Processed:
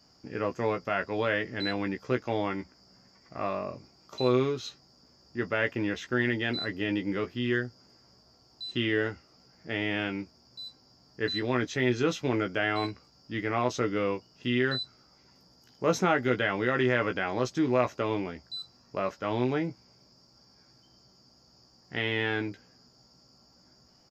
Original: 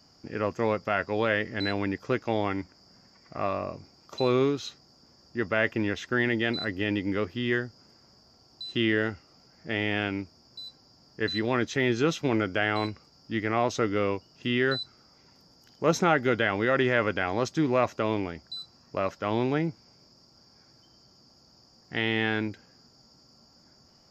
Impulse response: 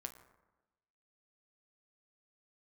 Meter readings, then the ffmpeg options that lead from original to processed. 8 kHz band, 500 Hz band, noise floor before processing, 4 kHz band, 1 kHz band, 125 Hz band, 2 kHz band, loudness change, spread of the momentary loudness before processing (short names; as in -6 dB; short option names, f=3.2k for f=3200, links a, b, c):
n/a, -1.5 dB, -60 dBFS, -1.5 dB, -2.5 dB, -1.5 dB, -2.0 dB, -2.0 dB, 14 LU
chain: -filter_complex "[0:a]asplit=2[a][b];[b]adelay=16,volume=-6dB[c];[a][c]amix=inputs=2:normalize=0,volume=-3dB"